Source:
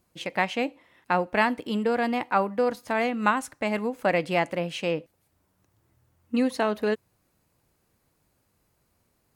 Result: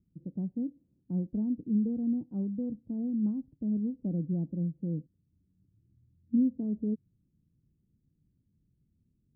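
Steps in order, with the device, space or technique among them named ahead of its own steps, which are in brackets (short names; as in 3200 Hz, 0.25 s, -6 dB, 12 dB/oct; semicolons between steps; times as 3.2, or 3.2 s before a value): the neighbour's flat through the wall (LPF 270 Hz 24 dB/oct; bell 160 Hz +4 dB 0.77 oct)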